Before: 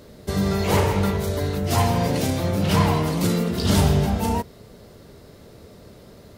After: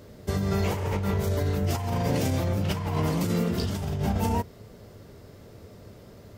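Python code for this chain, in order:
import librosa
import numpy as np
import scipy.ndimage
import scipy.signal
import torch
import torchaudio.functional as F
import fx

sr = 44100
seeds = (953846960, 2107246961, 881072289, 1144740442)

y = fx.graphic_eq_31(x, sr, hz=(100, 4000, 10000), db=(7, -5, -5))
y = fx.over_compress(y, sr, threshold_db=-21.0, ratio=-1.0)
y = y * 10.0 ** (-5.0 / 20.0)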